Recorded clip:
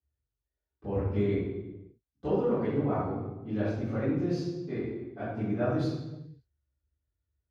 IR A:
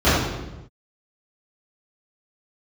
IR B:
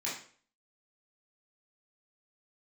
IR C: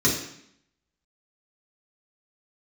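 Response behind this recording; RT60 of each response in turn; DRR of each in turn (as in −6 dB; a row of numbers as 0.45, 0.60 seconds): A; non-exponential decay, 0.45 s, 0.70 s; −17.0, −8.0, −5.5 decibels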